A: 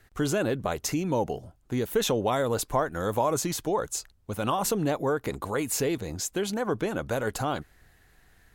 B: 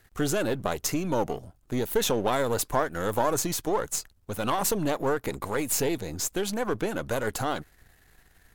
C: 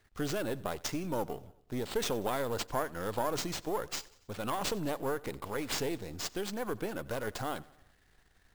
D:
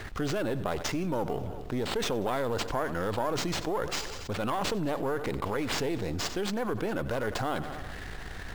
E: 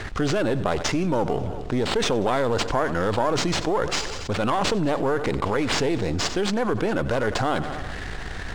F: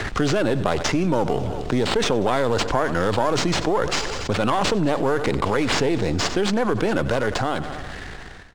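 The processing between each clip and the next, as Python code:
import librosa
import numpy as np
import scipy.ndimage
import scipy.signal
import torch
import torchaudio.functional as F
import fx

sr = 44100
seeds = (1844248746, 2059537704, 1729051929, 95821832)

y1 = np.where(x < 0.0, 10.0 ** (-7.0 / 20.0) * x, x)
y1 = fx.high_shelf(y1, sr, hz=7900.0, db=5.0)
y1 = y1 * librosa.db_to_amplitude(2.5)
y2 = fx.sample_hold(y1, sr, seeds[0], rate_hz=12000.0, jitter_pct=0)
y2 = fx.echo_feedback(y2, sr, ms=93, feedback_pct=55, wet_db=-22)
y2 = y2 * librosa.db_to_amplitude(-7.5)
y3 = fx.high_shelf(y2, sr, hz=5900.0, db=-11.0)
y3 = fx.env_flatten(y3, sr, amount_pct=70)
y4 = scipy.signal.savgol_filter(y3, 9, 4, mode='constant')
y4 = y4 * librosa.db_to_amplitude(7.5)
y5 = fx.fade_out_tail(y4, sr, length_s=1.53)
y5 = fx.band_squash(y5, sr, depth_pct=40)
y5 = y5 * librosa.db_to_amplitude(2.0)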